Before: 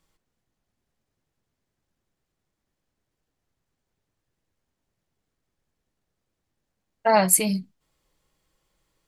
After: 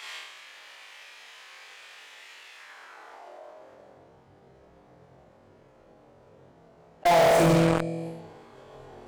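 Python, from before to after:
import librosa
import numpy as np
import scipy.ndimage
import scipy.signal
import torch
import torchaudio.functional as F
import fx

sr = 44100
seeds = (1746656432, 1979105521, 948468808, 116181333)

p1 = fx.low_shelf_res(x, sr, hz=390.0, db=-13.5, q=1.5)
p2 = fx.room_flutter(p1, sr, wall_m=4.0, rt60_s=0.85)
p3 = fx.filter_sweep_bandpass(p2, sr, from_hz=2500.0, to_hz=200.0, start_s=2.52, end_s=4.1, q=1.7)
p4 = fx.pitch_keep_formants(p3, sr, semitones=-4.5)
p5 = fx.fuzz(p4, sr, gain_db=48.0, gate_db=-49.0)
p6 = p4 + F.gain(torch.from_numpy(p5), -9.0).numpy()
y = fx.env_flatten(p6, sr, amount_pct=70)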